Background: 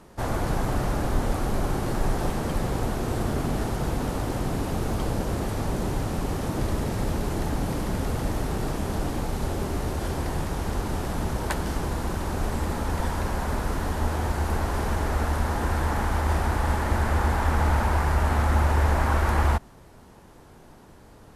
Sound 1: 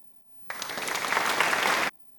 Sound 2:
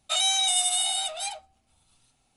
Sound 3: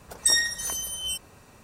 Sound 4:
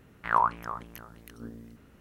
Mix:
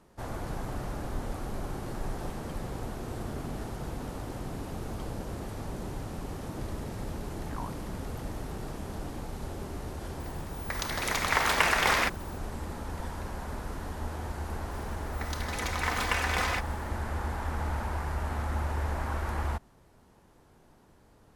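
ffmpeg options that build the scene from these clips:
-filter_complex "[1:a]asplit=2[a][b];[0:a]volume=-10dB[c];[4:a]equalizer=f=1.4k:w=1.5:g=-11.5[d];[b]aecho=1:1:4:0.55[e];[d]atrim=end=2,asetpts=PTS-STARTPTS,volume=-13dB,afade=t=in:d=0.004:c=hsin,afade=t=out:st=1.996:d=0.004:c=hsin,adelay=318402S[f];[a]atrim=end=2.18,asetpts=PTS-STARTPTS,volume=-0.5dB,afade=t=in:d=0.004:c=hsin,afade=t=out:st=2.176:d=0.004:c=hsin,adelay=10200[g];[e]atrim=end=2.18,asetpts=PTS-STARTPTS,volume=-6.5dB,afade=t=in:d=0.004:c=hsin,afade=t=out:st=2.176:d=0.004:c=hsin,adelay=14710[h];[c][f][g][h]amix=inputs=4:normalize=0"

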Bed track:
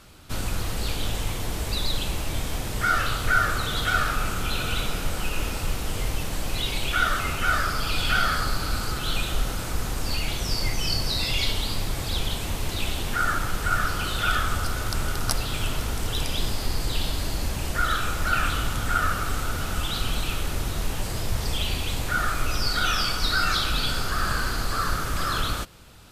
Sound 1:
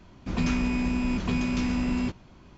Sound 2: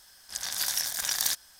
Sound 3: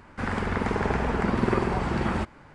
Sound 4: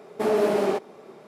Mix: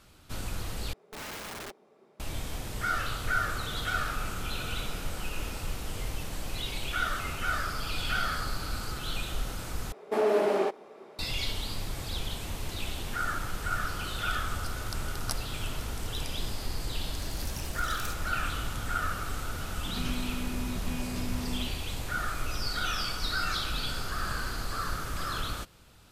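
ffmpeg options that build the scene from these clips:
-filter_complex "[4:a]asplit=2[a][b];[0:a]volume=-7.5dB[c];[a]aeval=exprs='(mod(10.6*val(0)+1,2)-1)/10.6':c=same[d];[b]bass=f=250:g=-10,treble=f=4k:g=-4[e];[c]asplit=3[f][g][h];[f]atrim=end=0.934[i];[d]atrim=end=1.27,asetpts=PTS-STARTPTS,volume=-15dB[j];[g]atrim=start=2.196:end=9.924[k];[e]atrim=end=1.27,asetpts=PTS-STARTPTS,volume=-2dB[l];[h]atrim=start=11.186[m];[2:a]atrim=end=1.59,asetpts=PTS-STARTPTS,volume=-15.5dB,afade=t=in:d=0.004:c=hsin,afade=t=out:st=1.586:d=0.004:c=hsin,adelay=16790[n];[1:a]atrim=end=2.57,asetpts=PTS-STARTPTS,volume=-10dB,afade=t=in:d=0.004:c=hsin,afade=t=out:st=2.566:d=0.004:c=hsin,adelay=19590[o];[i][j]acrossfade=d=0.004:c1=hsin:c2=hsin[p];[p][k]acrossfade=d=0.004:c1=hsin:c2=hsin[q];[q][l]acrossfade=d=0.004:c1=hsin:c2=hsin[r];[r][m]acrossfade=d=0.004:c1=hsin:c2=hsin[s];[s][n][o]amix=inputs=3:normalize=0"

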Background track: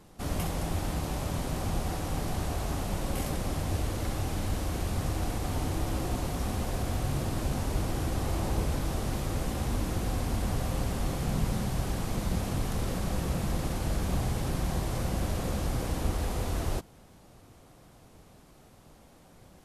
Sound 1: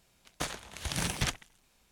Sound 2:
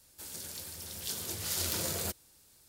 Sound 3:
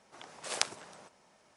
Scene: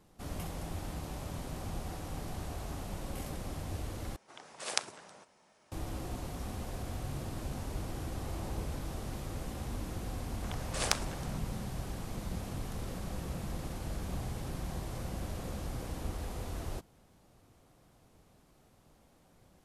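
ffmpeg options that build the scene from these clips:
-filter_complex "[3:a]asplit=2[a][b];[0:a]volume=-8.5dB[c];[b]acontrast=79[d];[c]asplit=2[e][f];[e]atrim=end=4.164[g];[a]atrim=end=1.56,asetpts=PTS-STARTPTS,volume=-1.5dB[h];[f]atrim=start=5.716[i];[d]atrim=end=1.56,asetpts=PTS-STARTPTS,volume=-4dB,afade=t=in:d=0.004:c=hsin,afade=t=out:st=1.556:d=0.004:c=hsin,adelay=10300[j];[g][h]acrossfade=d=0.004:c1=hsin:c2=hsin[k];[k][i]acrossfade=d=0.004:c1=hsin:c2=hsin[l];[l][j]amix=inputs=2:normalize=0"

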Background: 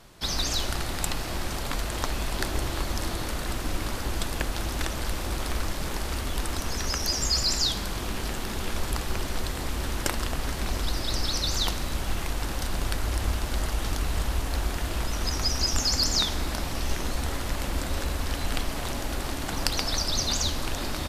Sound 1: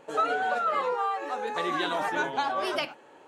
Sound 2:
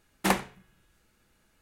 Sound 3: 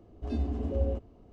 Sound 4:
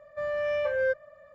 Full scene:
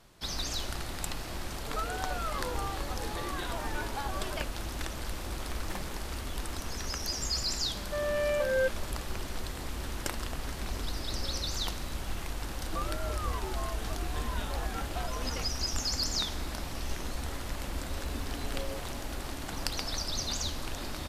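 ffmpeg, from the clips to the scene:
-filter_complex "[1:a]asplit=2[a][b];[3:a]asplit=2[c][d];[0:a]volume=-7dB[e];[b]afreqshift=-120[f];[d]aemphasis=mode=production:type=riaa[g];[a]atrim=end=3.27,asetpts=PTS-STARTPTS,volume=-10dB,afade=t=in:d=0.004:c=hsin,afade=t=out:st=3.266:d=0.004:c=hsin,adelay=1590[h];[2:a]atrim=end=1.61,asetpts=PTS-STARTPTS,volume=-17.5dB,afade=t=in:d=0.004:c=hsin,afade=t=out:st=1.606:d=0.004:c=hsin,adelay=240345S[i];[4:a]atrim=end=1.34,asetpts=PTS-STARTPTS,volume=-1.5dB,afade=t=in:d=0.004:c=hsin,afade=t=out:st=1.336:d=0.004:c=hsin,adelay=7750[j];[c]atrim=end=1.32,asetpts=PTS-STARTPTS,volume=-15dB,afade=t=in:d=0.004:c=hsin,afade=t=out:st=1.316:d=0.004:c=hsin,adelay=10480[k];[f]atrim=end=3.27,asetpts=PTS-STARTPTS,volume=-12dB,afade=t=in:d=0.004:c=hsin,afade=t=out:st=3.266:d=0.004:c=hsin,adelay=12580[l];[g]atrim=end=1.32,asetpts=PTS-STARTPTS,volume=-4.5dB,afade=t=in:d=0.004:c=hsin,afade=t=out:st=1.316:d=0.004:c=hsin,adelay=17830[m];[e][h][i][j][k][l][m]amix=inputs=7:normalize=0"

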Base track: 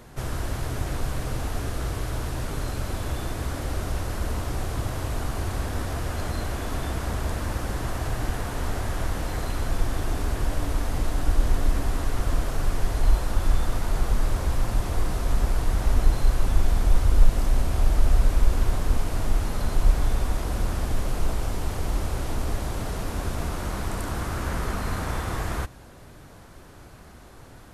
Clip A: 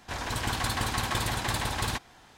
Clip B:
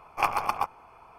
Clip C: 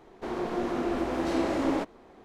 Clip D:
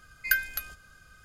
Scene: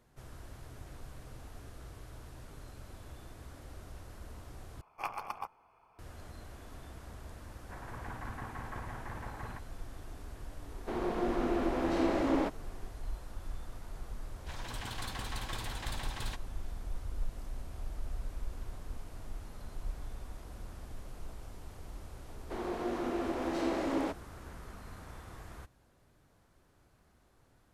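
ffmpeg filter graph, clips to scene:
-filter_complex "[1:a]asplit=2[a][b];[3:a]asplit=2[c][d];[0:a]volume=-20dB[e];[a]lowpass=f=1.9k:w=0.5412,lowpass=f=1.9k:w=1.3066[f];[c]highshelf=f=6.7k:g=-8[g];[b]equalizer=f=3.3k:t=o:w=0.77:g=3[h];[d]highpass=180[i];[e]asplit=2[j][k];[j]atrim=end=4.814[l];[2:a]atrim=end=1.18,asetpts=PTS-STARTPTS,volume=-13dB[m];[k]atrim=start=5.986[n];[f]atrim=end=2.37,asetpts=PTS-STARTPTS,volume=-12.5dB,afade=t=in:d=0.004:c=hsin,afade=t=out:st=2.366:d=0.004:c=hsin,adelay=7610[o];[g]atrim=end=2.24,asetpts=PTS-STARTPTS,volume=-2.5dB,afade=t=in:d=0.004:c=hsin,afade=t=out:st=2.236:d=0.004:c=hsin,adelay=10650[p];[h]atrim=end=2.37,asetpts=PTS-STARTPTS,volume=-12.5dB,afade=t=in:d=0.004:c=hsin,afade=t=out:st=2.366:d=0.004:c=hsin,adelay=14380[q];[i]atrim=end=2.24,asetpts=PTS-STARTPTS,volume=-5dB,afade=t=in:d=0.004:c=hsin,afade=t=out:st=2.236:d=0.004:c=hsin,adelay=982548S[r];[l][m]acrossfade=d=0.004:c1=hsin:c2=hsin[s];[s][n]acrossfade=d=0.004:c1=hsin:c2=hsin[t];[t][o][p][q][r]amix=inputs=5:normalize=0"

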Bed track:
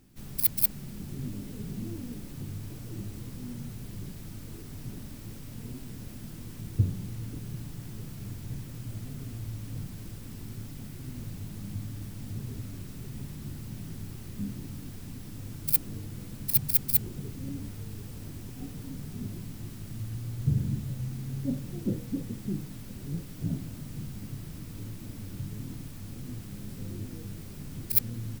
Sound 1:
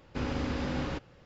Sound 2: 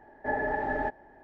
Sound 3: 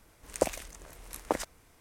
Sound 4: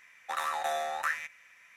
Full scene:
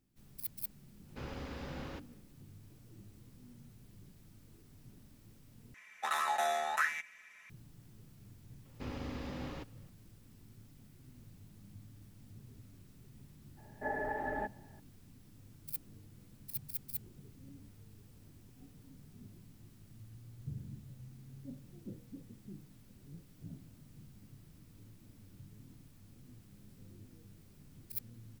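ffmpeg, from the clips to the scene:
-filter_complex "[1:a]asplit=2[a][b];[0:a]volume=-17dB[c];[a]bandreject=f=50:t=h:w=6,bandreject=f=100:t=h:w=6,bandreject=f=150:t=h:w=6,bandreject=f=200:t=h:w=6,bandreject=f=250:t=h:w=6,bandreject=f=300:t=h:w=6,bandreject=f=350:t=h:w=6[d];[4:a]aecho=1:1:4.7:0.66[e];[b]bandreject=f=1.5k:w=11[f];[c]asplit=2[g][h];[g]atrim=end=5.744[i];[e]atrim=end=1.76,asetpts=PTS-STARTPTS,volume=-1.5dB[j];[h]atrim=start=7.496[k];[d]atrim=end=1.25,asetpts=PTS-STARTPTS,volume=-10dB,afade=t=in:d=0.1,afade=t=out:st=1.15:d=0.1,adelay=1010[l];[f]atrim=end=1.25,asetpts=PTS-STARTPTS,volume=-9.5dB,afade=t=in:d=0.004:c=hsin,afade=t=out:st=1.246:d=0.004:c=hsin,adelay=8650[m];[2:a]atrim=end=1.23,asetpts=PTS-STARTPTS,volume=-7.5dB,afade=t=in:d=0.004:c=hsin,afade=t=out:st=1.226:d=0.004:c=hsin,adelay=13570[n];[i][j]acrossfade=d=0.004:c1=hsin:c2=hsin[o];[o][k]acrossfade=d=0.004:c1=hsin:c2=hsin[p];[p][l][m][n]amix=inputs=4:normalize=0"

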